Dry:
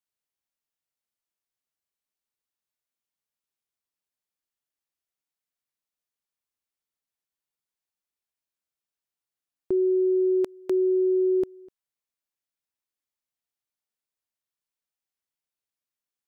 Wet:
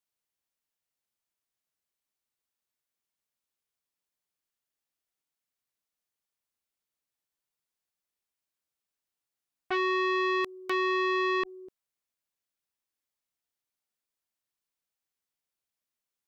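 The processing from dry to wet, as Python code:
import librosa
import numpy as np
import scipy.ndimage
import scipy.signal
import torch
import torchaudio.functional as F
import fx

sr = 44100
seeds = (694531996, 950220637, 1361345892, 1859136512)

y = fx.transformer_sat(x, sr, knee_hz=1400.0)
y = F.gain(torch.from_numpy(y), 1.0).numpy()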